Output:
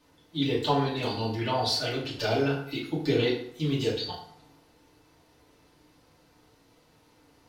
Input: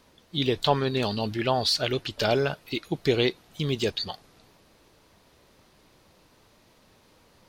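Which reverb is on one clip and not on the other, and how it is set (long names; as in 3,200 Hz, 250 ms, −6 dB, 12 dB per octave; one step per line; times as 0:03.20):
feedback delay network reverb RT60 0.65 s, low-frequency decay 1×, high-frequency decay 0.7×, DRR −7.5 dB
level −10.5 dB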